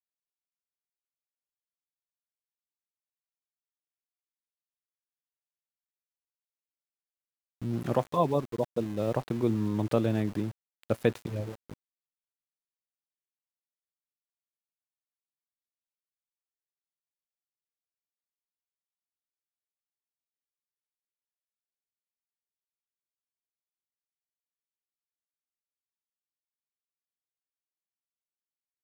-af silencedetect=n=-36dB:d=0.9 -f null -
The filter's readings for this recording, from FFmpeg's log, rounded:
silence_start: 0.00
silence_end: 7.62 | silence_duration: 7.62
silence_start: 11.73
silence_end: 28.83 | silence_duration: 17.10